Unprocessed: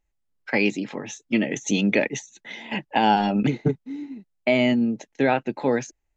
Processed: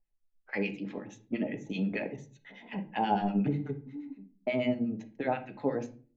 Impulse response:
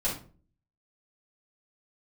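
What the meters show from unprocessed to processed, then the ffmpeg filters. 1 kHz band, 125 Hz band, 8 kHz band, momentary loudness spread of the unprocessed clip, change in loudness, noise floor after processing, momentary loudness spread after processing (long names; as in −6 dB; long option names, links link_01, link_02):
−9.5 dB, −7.5 dB, can't be measured, 15 LU, −10.0 dB, −71 dBFS, 14 LU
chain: -filter_complex "[0:a]acrossover=split=1100[link_01][link_02];[link_01]aeval=exprs='val(0)*(1-1/2+1/2*cos(2*PI*8.3*n/s))':channel_layout=same[link_03];[link_02]aeval=exprs='val(0)*(1-1/2-1/2*cos(2*PI*8.3*n/s))':channel_layout=same[link_04];[link_03][link_04]amix=inputs=2:normalize=0,lowpass=frequency=1900:poles=1,asplit=2[link_05][link_06];[1:a]atrim=start_sample=2205,lowpass=4700[link_07];[link_06][link_07]afir=irnorm=-1:irlink=0,volume=-12.5dB[link_08];[link_05][link_08]amix=inputs=2:normalize=0,volume=-6.5dB"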